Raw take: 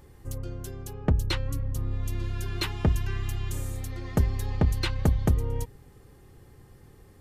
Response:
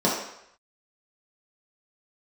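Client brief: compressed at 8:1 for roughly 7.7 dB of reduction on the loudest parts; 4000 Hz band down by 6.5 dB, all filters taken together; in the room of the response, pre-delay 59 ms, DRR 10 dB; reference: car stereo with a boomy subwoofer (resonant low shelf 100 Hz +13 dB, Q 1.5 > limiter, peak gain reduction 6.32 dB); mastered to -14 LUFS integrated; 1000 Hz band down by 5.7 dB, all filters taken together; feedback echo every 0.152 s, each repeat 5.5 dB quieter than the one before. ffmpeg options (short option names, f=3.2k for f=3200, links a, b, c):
-filter_complex "[0:a]equalizer=f=1k:t=o:g=-7,equalizer=f=4k:t=o:g=-7.5,acompressor=threshold=-25dB:ratio=8,aecho=1:1:152|304|456|608|760|912|1064:0.531|0.281|0.149|0.079|0.0419|0.0222|0.0118,asplit=2[a][b];[1:a]atrim=start_sample=2205,adelay=59[c];[b][c]afir=irnorm=-1:irlink=0,volume=-26dB[d];[a][d]amix=inputs=2:normalize=0,lowshelf=f=100:t=q:w=1.5:g=13,volume=8.5dB,alimiter=limit=-3dB:level=0:latency=1"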